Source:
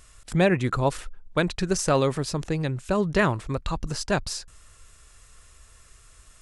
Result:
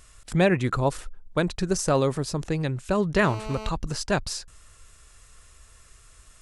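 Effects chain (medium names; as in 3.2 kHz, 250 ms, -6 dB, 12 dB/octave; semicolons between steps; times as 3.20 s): 0.80–2.44 s: peaking EQ 2.4 kHz -4.5 dB 1.7 oct; 3.24–3.69 s: mobile phone buzz -37 dBFS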